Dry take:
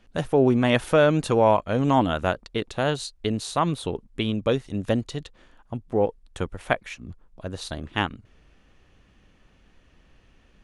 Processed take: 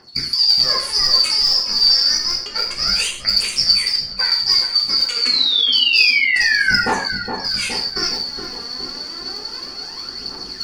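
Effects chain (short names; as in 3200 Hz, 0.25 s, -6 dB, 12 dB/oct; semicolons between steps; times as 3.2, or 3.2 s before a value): four-band scrambler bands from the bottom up 2341; low shelf 66 Hz -6.5 dB; reverse; upward compressor, threshold -22 dBFS; reverse; limiter -15.5 dBFS, peak gain reduction 11 dB; phaser 0.29 Hz, delay 4.3 ms, feedback 76%; painted sound fall, 5.21–6.81, 1400–4600 Hz -22 dBFS; darkening echo 0.416 s, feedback 69%, low-pass 910 Hz, level -4.5 dB; non-linear reverb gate 0.18 s falling, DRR -0.5 dB; gain +2.5 dB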